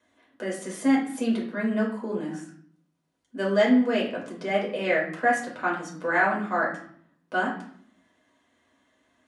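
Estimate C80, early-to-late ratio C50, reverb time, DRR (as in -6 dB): 10.5 dB, 6.0 dB, 0.60 s, -4.5 dB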